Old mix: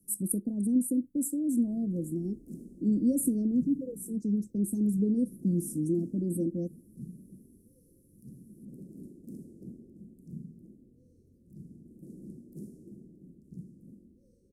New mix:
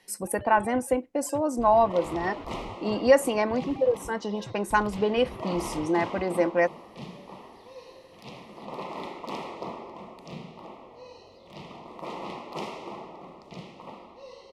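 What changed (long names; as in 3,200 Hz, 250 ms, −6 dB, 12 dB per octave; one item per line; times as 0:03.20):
speech −6.0 dB
first sound: unmuted
master: remove inverse Chebyshev band-stop filter 910–3,200 Hz, stop band 70 dB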